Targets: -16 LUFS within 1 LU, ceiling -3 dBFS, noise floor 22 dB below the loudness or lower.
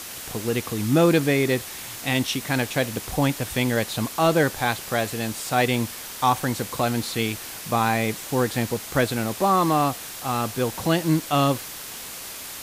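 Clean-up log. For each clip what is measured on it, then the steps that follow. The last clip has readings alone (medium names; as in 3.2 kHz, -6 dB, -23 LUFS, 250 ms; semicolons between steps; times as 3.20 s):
noise floor -37 dBFS; noise floor target -46 dBFS; loudness -24.0 LUFS; peak level -7.5 dBFS; loudness target -16.0 LUFS
-> noise reduction 9 dB, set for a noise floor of -37 dBFS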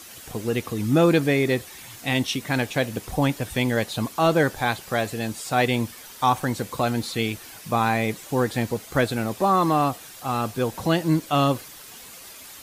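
noise floor -43 dBFS; noise floor target -46 dBFS
-> noise reduction 6 dB, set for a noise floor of -43 dBFS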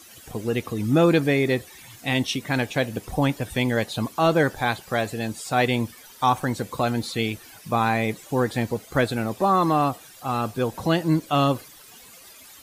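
noise floor -48 dBFS; loudness -24.0 LUFS; peak level -8.0 dBFS; loudness target -16.0 LUFS
-> trim +8 dB; peak limiter -3 dBFS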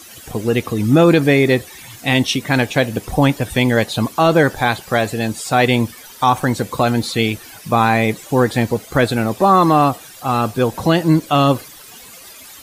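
loudness -16.5 LUFS; peak level -3.0 dBFS; noise floor -40 dBFS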